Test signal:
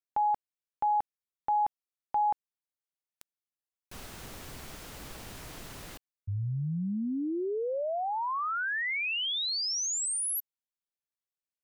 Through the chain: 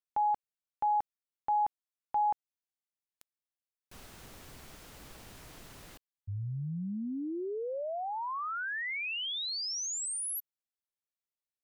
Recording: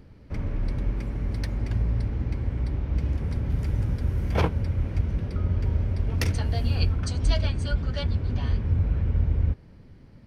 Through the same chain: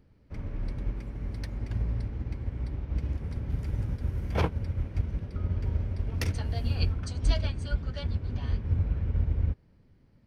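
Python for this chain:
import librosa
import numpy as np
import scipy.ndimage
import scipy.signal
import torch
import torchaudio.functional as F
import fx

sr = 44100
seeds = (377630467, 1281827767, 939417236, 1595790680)

y = fx.upward_expand(x, sr, threshold_db=-36.0, expansion=1.5)
y = y * librosa.db_to_amplitude(-1.5)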